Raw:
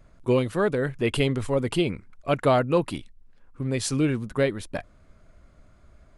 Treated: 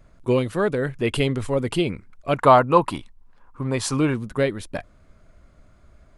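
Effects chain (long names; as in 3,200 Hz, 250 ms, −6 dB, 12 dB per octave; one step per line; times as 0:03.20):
0:02.35–0:04.14: parametric band 1,000 Hz +13.5 dB 0.81 octaves
level +1.5 dB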